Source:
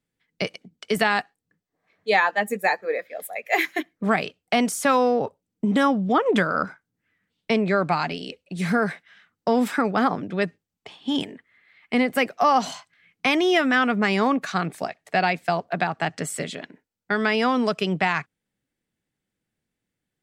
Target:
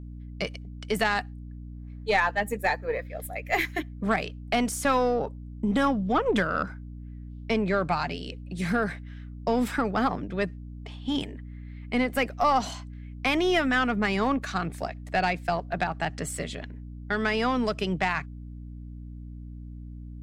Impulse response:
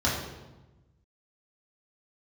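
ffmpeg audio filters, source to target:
-af "aeval=exprs='val(0)+0.0178*(sin(2*PI*60*n/s)+sin(2*PI*2*60*n/s)/2+sin(2*PI*3*60*n/s)/3+sin(2*PI*4*60*n/s)/4+sin(2*PI*5*60*n/s)/5)':channel_layout=same,aeval=exprs='0.501*(cos(1*acos(clip(val(0)/0.501,-1,1)))-cos(1*PI/2))+0.0316*(cos(3*acos(clip(val(0)/0.501,-1,1)))-cos(3*PI/2))+0.0178*(cos(5*acos(clip(val(0)/0.501,-1,1)))-cos(5*PI/2))+0.0178*(cos(6*acos(clip(val(0)/0.501,-1,1)))-cos(6*PI/2))':channel_layout=same,volume=-3.5dB"

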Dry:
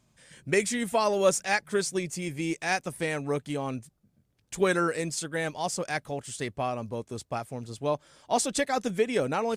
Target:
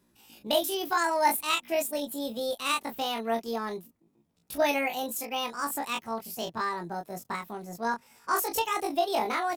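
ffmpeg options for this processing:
ffmpeg -i in.wav -filter_complex "[0:a]asplit=2[link_01][link_02];[link_02]adelay=28,volume=-6dB[link_03];[link_01][link_03]amix=inputs=2:normalize=0,asetrate=70004,aresample=44100,atempo=0.629961,volume=-2dB" out.wav

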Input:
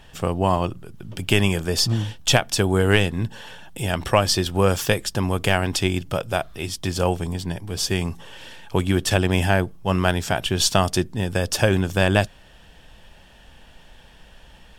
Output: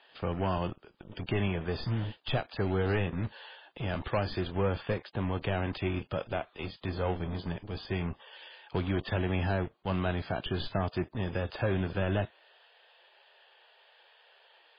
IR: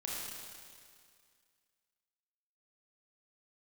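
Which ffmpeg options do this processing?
-filter_complex "[0:a]asettb=1/sr,asplit=3[link_01][link_02][link_03];[link_01]atrim=end=2.844[link_04];[link_02]atrim=start=2.84:end=3.24,asetpts=PTS-STARTPTS,afade=type=in:duration=0.004:curve=qsin,afade=type=out:start_time=0.396:duration=0.004:curve=qsin,bandreject=frequency=3100:width=14[link_05];[link_03]atrim=start=3.236[link_06];[link_04][link_05]acrossfade=duration=0.004:curve1=hsin:curve2=qsin[link_07];[link_07][link_06]acrossfade=duration=0.004:curve1=qsin:curve2=hsin,asettb=1/sr,asplit=3[link_08][link_09][link_10];[link_08]atrim=end=4.474[link_11];[link_09]atrim=start=4.47:end=5.42,asetpts=PTS-STARTPTS,afade=type=in:duration=0.004:curve=qsin,afade=type=out:start_time=0.946:duration=0.004:curve=qsin,highshelf=frequency=2900:gain=-6[link_12];[link_10]atrim=start=5.416[link_13];[link_11][link_12]acrossfade=duration=0.004:curve1=hsin:curve2=qsin[link_14];[link_14][link_13]acrossfade=duration=0.004:curve1=qsin:curve2=hsin,asettb=1/sr,asplit=3[link_15][link_16][link_17];[link_15]atrim=end=6.764[link_18];[link_16]atrim=start=6.76:end=7.33,asetpts=PTS-STARTPTS,afade=type=in:duration=0.004:curve=qsin,afade=type=out:start_time=0.566:duration=0.004:curve=qsin,bandreject=frequency=59.22:width_type=h:width=4,bandreject=frequency=118.44:width_type=h:width=4,bandreject=frequency=177.66:width_type=h:width=4,bandreject=frequency=236.88:width_type=h:width=4,bandreject=frequency=296.1:width_type=h:width=4,bandreject=frequency=355.32:width_type=h:width=4[link_19];[link_17]atrim=start=7.326[link_20];[link_18][link_19]acrossfade=duration=0.004:curve1=hsin:curve2=qsin[link_21];[link_21][link_20]acrossfade=duration=0.004:curve1=qsin:curve2=hsin,acrossover=split=380|610|2800[link_22][link_23][link_24][link_25];[link_22]acrusher=bits=4:mix=0:aa=0.5[link_26];[link_24]asoftclip=type=hard:threshold=-22.5dB[link_27];[link_25]acompressor=threshold=-39dB:ratio=8[link_28];[link_26][link_23][link_27][link_28]amix=inputs=4:normalize=0,asoftclip=type=tanh:threshold=-13dB,volume=-7.5dB" -ar 11025 -c:a libmp3lame -b:a 16k

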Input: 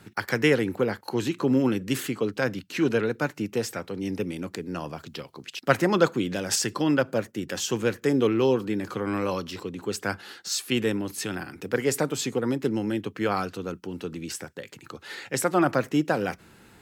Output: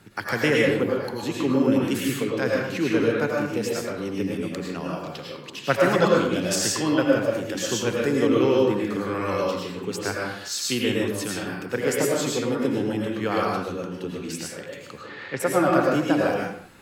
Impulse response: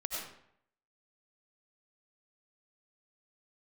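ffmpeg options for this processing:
-filter_complex "[0:a]asettb=1/sr,asplit=3[link_01][link_02][link_03];[link_01]atrim=end=0.834[link_04];[link_02]atrim=start=0.83:end=1.23,asetpts=PTS-STARTPTS,afade=type=in:duration=0.004:curve=qsin,afade=type=out:start_time=0.396:duration=0.004:curve=qsin,acompressor=threshold=-28dB:ratio=6[link_05];[link_03]atrim=start=1.226[link_06];[link_04][link_05]acrossfade=duration=0.004:curve1=hsin:curve2=qsin[link_07];[link_07][link_06]acrossfade=duration=0.004:curve1=qsin:curve2=hsin,asplit=3[link_08][link_09][link_10];[link_08]afade=type=out:start_time=14.91:duration=0.02[link_11];[link_09]lowpass=2700,afade=type=in:start_time=14.91:duration=0.02,afade=type=out:start_time=15.39:duration=0.02[link_12];[link_10]afade=type=in:start_time=15.39:duration=0.02[link_13];[link_11][link_12][link_13]amix=inputs=3:normalize=0[link_14];[1:a]atrim=start_sample=2205,afade=type=out:start_time=0.39:duration=0.01,atrim=end_sample=17640,asetrate=39690,aresample=44100[link_15];[link_14][link_15]afir=irnorm=-1:irlink=0"

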